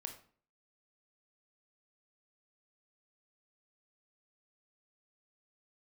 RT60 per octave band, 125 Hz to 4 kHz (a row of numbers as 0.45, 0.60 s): 0.50, 0.55, 0.50, 0.45, 0.40, 0.35 s